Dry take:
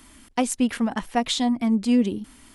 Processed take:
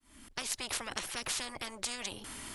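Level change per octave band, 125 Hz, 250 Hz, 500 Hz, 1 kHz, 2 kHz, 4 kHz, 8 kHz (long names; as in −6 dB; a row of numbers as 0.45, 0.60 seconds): can't be measured, −29.0 dB, −17.5 dB, −15.0 dB, −5.5 dB, −6.5 dB, −3.0 dB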